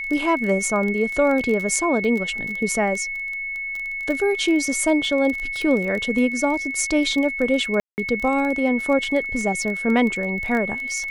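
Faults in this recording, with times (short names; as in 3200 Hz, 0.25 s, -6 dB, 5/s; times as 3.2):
crackle 20/s -25 dBFS
tone 2200 Hz -26 dBFS
7.8–7.98 gap 0.179 s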